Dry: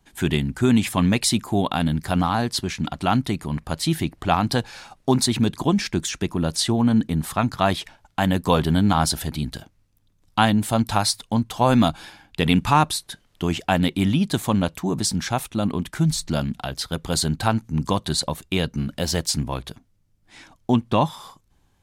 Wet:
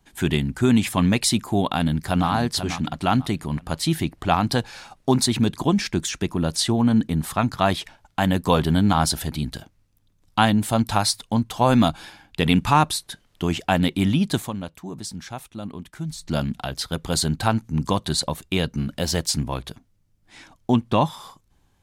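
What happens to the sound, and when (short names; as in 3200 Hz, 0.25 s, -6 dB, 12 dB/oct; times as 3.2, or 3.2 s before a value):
1.71–2.29 echo throw 0.49 s, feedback 30%, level -9.5 dB
14.37–16.35 dip -10.5 dB, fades 0.15 s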